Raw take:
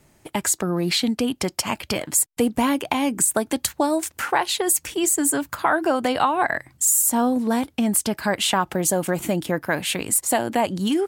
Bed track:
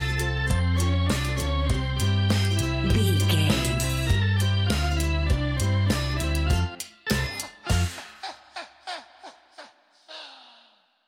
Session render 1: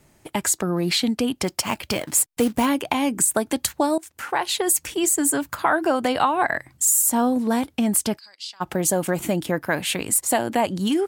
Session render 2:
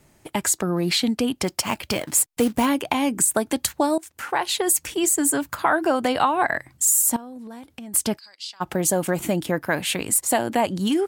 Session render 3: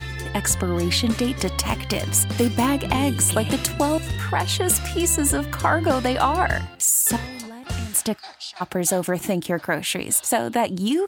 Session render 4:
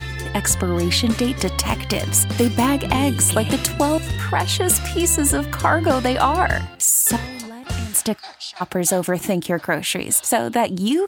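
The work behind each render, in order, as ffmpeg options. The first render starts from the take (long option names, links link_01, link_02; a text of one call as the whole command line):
ffmpeg -i in.wav -filter_complex "[0:a]asplit=3[link_01][link_02][link_03];[link_01]afade=type=out:start_time=1.46:duration=0.02[link_04];[link_02]acrusher=bits=4:mode=log:mix=0:aa=0.000001,afade=type=in:start_time=1.46:duration=0.02,afade=type=out:start_time=2.65:duration=0.02[link_05];[link_03]afade=type=in:start_time=2.65:duration=0.02[link_06];[link_04][link_05][link_06]amix=inputs=3:normalize=0,asplit=3[link_07][link_08][link_09];[link_07]afade=type=out:start_time=8.17:duration=0.02[link_10];[link_08]bandpass=frequency=4800:width_type=q:width=7.9,afade=type=in:start_time=8.17:duration=0.02,afade=type=out:start_time=8.6:duration=0.02[link_11];[link_09]afade=type=in:start_time=8.6:duration=0.02[link_12];[link_10][link_11][link_12]amix=inputs=3:normalize=0,asplit=2[link_13][link_14];[link_13]atrim=end=3.98,asetpts=PTS-STARTPTS,afade=type=out:start_time=3.976:duration=0.004:curve=hsin:silence=0.112202[link_15];[link_14]atrim=start=3.98,asetpts=PTS-STARTPTS,afade=type=in:duration=0.57:silence=0.112202[link_16];[link_15][link_16]concat=n=2:v=0:a=1" out.wav
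ffmpeg -i in.wav -filter_complex "[0:a]asettb=1/sr,asplit=3[link_01][link_02][link_03];[link_01]atrim=end=7.164[link_04];[link_02]atrim=start=7.16:end=7.94,asetpts=PTS-STARTPTS,afade=type=in:duration=0.004:curve=qsin,afade=type=out:start_time=0.776:duration=0.004:curve=qsin,acompressor=threshold=-35dB:ratio=12:attack=3.2:release=140:knee=1:detection=peak[link_05];[link_03]atrim=start=7.936[link_06];[link_04][link_05]acrossfade=duration=0.004:curve1=hsin:curve2=qsin[link_07];[link_07][link_06]acrossfade=duration=0.004:curve1=qsin:curve2=hsin" out.wav
ffmpeg -i in.wav -i bed.wav -filter_complex "[1:a]volume=-5dB[link_01];[0:a][link_01]amix=inputs=2:normalize=0" out.wav
ffmpeg -i in.wav -af "volume=2.5dB" out.wav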